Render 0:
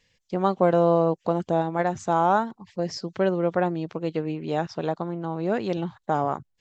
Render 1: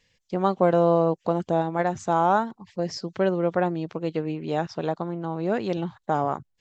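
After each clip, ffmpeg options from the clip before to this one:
ffmpeg -i in.wav -af anull out.wav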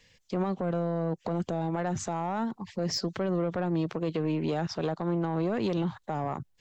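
ffmpeg -i in.wav -filter_complex "[0:a]acrossover=split=230[link_01][link_02];[link_02]acompressor=threshold=-26dB:ratio=6[link_03];[link_01][link_03]amix=inputs=2:normalize=0,alimiter=level_in=0.5dB:limit=-24dB:level=0:latency=1:release=59,volume=-0.5dB,asoftclip=type=tanh:threshold=-26dB,volume=5.5dB" out.wav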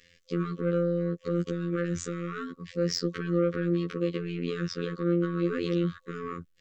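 ffmpeg -i in.wav -af "bass=frequency=250:gain=-5,treble=frequency=4000:gain=-4,afftfilt=real='re*(1-between(b*sr/4096,530,1100))':imag='im*(1-between(b*sr/4096,530,1100))':win_size=4096:overlap=0.75,afftfilt=real='hypot(re,im)*cos(PI*b)':imag='0':win_size=2048:overlap=0.75,volume=6dB" out.wav

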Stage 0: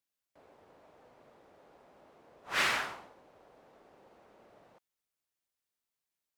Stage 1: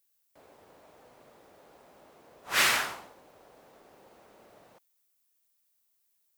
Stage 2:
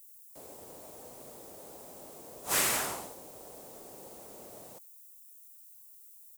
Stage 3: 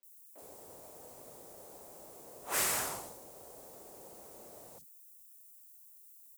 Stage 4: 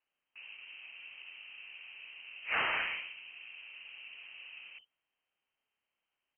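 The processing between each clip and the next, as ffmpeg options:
ffmpeg -i in.wav -af "aemphasis=mode=production:type=50kf,volume=3dB" out.wav
ffmpeg -i in.wav -filter_complex "[0:a]acrossover=split=640|2600[link_01][link_02][link_03];[link_01]acompressor=threshold=-45dB:ratio=4[link_04];[link_02]acompressor=threshold=-34dB:ratio=4[link_05];[link_03]acompressor=threshold=-46dB:ratio=4[link_06];[link_04][link_05][link_06]amix=inputs=3:normalize=0,firequalizer=gain_entry='entry(440,0);entry(1500,-9);entry(7800,12)':delay=0.05:min_phase=1,volume=7.5dB" out.wav
ffmpeg -i in.wav -filter_complex "[0:a]acrossover=split=230|3200[link_01][link_02][link_03];[link_03]adelay=30[link_04];[link_01]adelay=60[link_05];[link_05][link_02][link_04]amix=inputs=3:normalize=0,volume=-3dB" out.wav
ffmpeg -i in.wav -af "lowpass=frequency=2700:width_type=q:width=0.5098,lowpass=frequency=2700:width_type=q:width=0.6013,lowpass=frequency=2700:width_type=q:width=0.9,lowpass=frequency=2700:width_type=q:width=2.563,afreqshift=-3200,volume=5dB" out.wav

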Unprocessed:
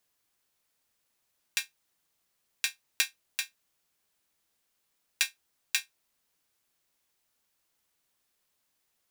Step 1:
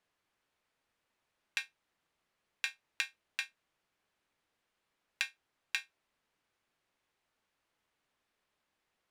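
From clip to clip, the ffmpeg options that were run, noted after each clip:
ffmpeg -i in.wav -af "lowpass=11000,bass=frequency=250:gain=-2,treble=frequency=4000:gain=-14,acompressor=threshold=-32dB:ratio=6,volume=2dB" out.wav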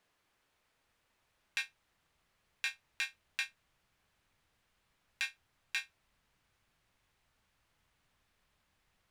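ffmpeg -i in.wav -af "asubboost=boost=4.5:cutoff=150,alimiter=level_in=1dB:limit=-24dB:level=0:latency=1:release=30,volume=-1dB,volume=5.5dB" out.wav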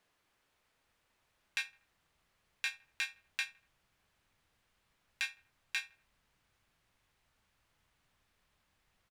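ffmpeg -i in.wav -filter_complex "[0:a]asplit=2[link_01][link_02];[link_02]adelay=80,lowpass=frequency=2100:poles=1,volume=-20dB,asplit=2[link_03][link_04];[link_04]adelay=80,lowpass=frequency=2100:poles=1,volume=0.46,asplit=2[link_05][link_06];[link_06]adelay=80,lowpass=frequency=2100:poles=1,volume=0.46[link_07];[link_01][link_03][link_05][link_07]amix=inputs=4:normalize=0" out.wav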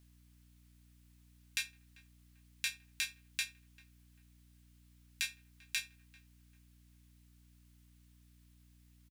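ffmpeg -i in.wav -filter_complex "[0:a]aderivative,asplit=2[link_01][link_02];[link_02]adelay=393,lowpass=frequency=930:poles=1,volume=-16.5dB,asplit=2[link_03][link_04];[link_04]adelay=393,lowpass=frequency=930:poles=1,volume=0.52,asplit=2[link_05][link_06];[link_06]adelay=393,lowpass=frequency=930:poles=1,volume=0.52,asplit=2[link_07][link_08];[link_08]adelay=393,lowpass=frequency=930:poles=1,volume=0.52,asplit=2[link_09][link_10];[link_10]adelay=393,lowpass=frequency=930:poles=1,volume=0.52[link_11];[link_01][link_03][link_05][link_07][link_09][link_11]amix=inputs=6:normalize=0,aeval=exprs='val(0)+0.000316*(sin(2*PI*60*n/s)+sin(2*PI*2*60*n/s)/2+sin(2*PI*3*60*n/s)/3+sin(2*PI*4*60*n/s)/4+sin(2*PI*5*60*n/s)/5)':channel_layout=same,volume=7.5dB" out.wav

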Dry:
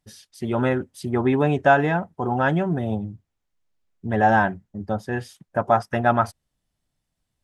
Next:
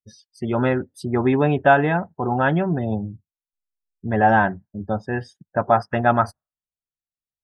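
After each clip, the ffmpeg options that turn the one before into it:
ffmpeg -i in.wav -af "afftdn=noise_reduction=29:noise_floor=-45,volume=1.5dB" out.wav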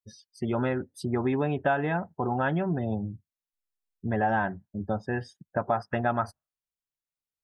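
ffmpeg -i in.wav -af "acompressor=threshold=-23dB:ratio=2.5,volume=-2.5dB" out.wav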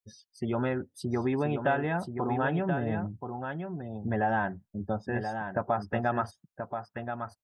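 ffmpeg -i in.wav -af "aecho=1:1:1030:0.447,volume=-2dB" out.wav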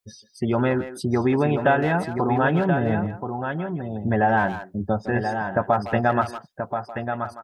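ffmpeg -i in.wav -filter_complex "[0:a]asplit=2[link_01][link_02];[link_02]adelay=160,highpass=300,lowpass=3400,asoftclip=type=hard:threshold=-25dB,volume=-11dB[link_03];[link_01][link_03]amix=inputs=2:normalize=0,volume=8dB" out.wav

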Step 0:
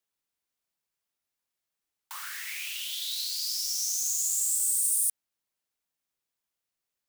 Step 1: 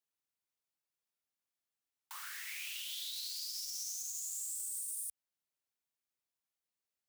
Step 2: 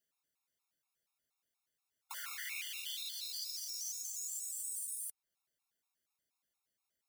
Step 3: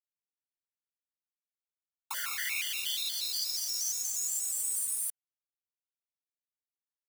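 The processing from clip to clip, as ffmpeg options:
ffmpeg -i in.wav -af "highpass=52,alimiter=level_in=0.5dB:limit=-24dB:level=0:latency=1:release=92,volume=-0.5dB,volume=-7dB" out.wav
ffmpeg -i in.wav -af "alimiter=level_in=12.5dB:limit=-24dB:level=0:latency=1:release=268,volume=-12.5dB,afftfilt=real='re*gt(sin(2*PI*4.2*pts/sr)*(1-2*mod(floor(b*sr/1024/710),2)),0)':imag='im*gt(sin(2*PI*4.2*pts/sr)*(1-2*mod(floor(b*sr/1024/710),2)),0)':win_size=1024:overlap=0.75,volume=7dB" out.wav
ffmpeg -i in.wav -af "acrusher=bits=8:mix=0:aa=0.5,volume=9dB" out.wav

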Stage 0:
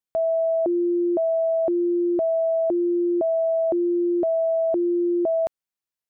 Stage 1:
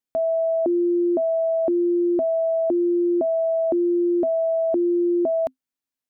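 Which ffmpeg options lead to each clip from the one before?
ffmpeg -i in.wav -af "equalizer=frequency=260:width=5.8:gain=14.5" out.wav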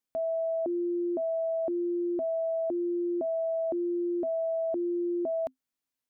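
ffmpeg -i in.wav -af "alimiter=level_in=2.5dB:limit=-24dB:level=0:latency=1:release=122,volume=-2.5dB" out.wav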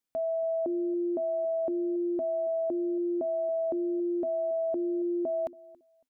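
ffmpeg -i in.wav -filter_complex "[0:a]asplit=2[link_01][link_02];[link_02]adelay=278,lowpass=frequency=940:poles=1,volume=-19.5dB,asplit=2[link_03][link_04];[link_04]adelay=278,lowpass=frequency=940:poles=1,volume=0.24[link_05];[link_01][link_03][link_05]amix=inputs=3:normalize=0" out.wav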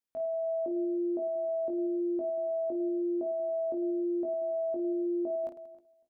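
ffmpeg -i in.wav -af "aecho=1:1:20|52|103.2|185.1|316.2:0.631|0.398|0.251|0.158|0.1,volume=-7.5dB" out.wav

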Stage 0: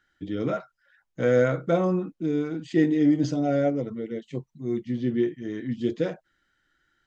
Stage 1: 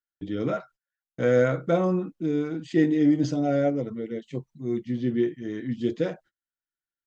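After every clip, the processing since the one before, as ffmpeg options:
ffmpeg -i in.wav -af "agate=range=-31dB:threshold=-50dB:ratio=16:detection=peak" out.wav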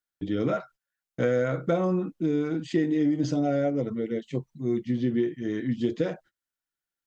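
ffmpeg -i in.wav -af "acompressor=threshold=-24dB:ratio=6,volume=3dB" out.wav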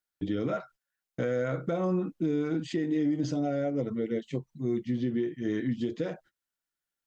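ffmpeg -i in.wav -af "alimiter=limit=-20.5dB:level=0:latency=1:release=274" out.wav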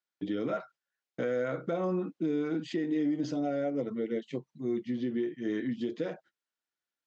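ffmpeg -i in.wav -af "highpass=200,lowpass=5800,volume=-1dB" out.wav

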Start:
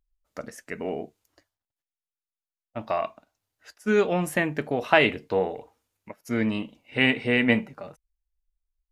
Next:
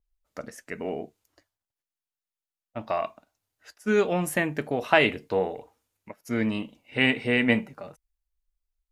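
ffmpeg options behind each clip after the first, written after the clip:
ffmpeg -i in.wav -af "adynamicequalizer=threshold=0.00708:dfrequency=6300:dqfactor=0.7:tfrequency=6300:tqfactor=0.7:attack=5:release=100:ratio=0.375:range=2.5:mode=boostabove:tftype=highshelf,volume=-1dB" out.wav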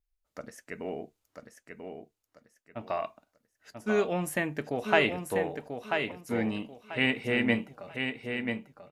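ffmpeg -i in.wav -af "aecho=1:1:989|1978|2967:0.501|0.135|0.0365,volume=-4.5dB" out.wav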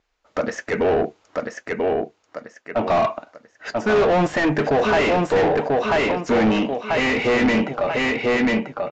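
ffmpeg -i in.wav -filter_complex "[0:a]asplit=2[link_01][link_02];[link_02]highpass=frequency=720:poles=1,volume=38dB,asoftclip=type=tanh:threshold=-8dB[link_03];[link_01][link_03]amix=inputs=2:normalize=0,lowpass=frequency=1000:poles=1,volume=-6dB,aresample=16000,aresample=44100" out.wav

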